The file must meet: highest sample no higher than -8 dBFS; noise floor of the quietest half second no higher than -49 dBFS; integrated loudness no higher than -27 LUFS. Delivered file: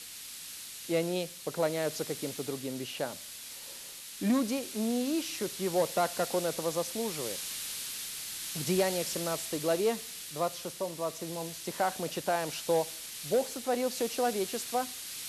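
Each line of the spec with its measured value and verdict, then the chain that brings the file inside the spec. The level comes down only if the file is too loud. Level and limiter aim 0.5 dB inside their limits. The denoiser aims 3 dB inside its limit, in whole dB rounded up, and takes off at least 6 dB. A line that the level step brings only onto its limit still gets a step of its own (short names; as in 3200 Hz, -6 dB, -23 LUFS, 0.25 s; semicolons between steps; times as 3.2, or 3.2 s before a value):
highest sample -16.5 dBFS: OK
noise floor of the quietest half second -45 dBFS: fail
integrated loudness -33.0 LUFS: OK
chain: denoiser 7 dB, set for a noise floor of -45 dBFS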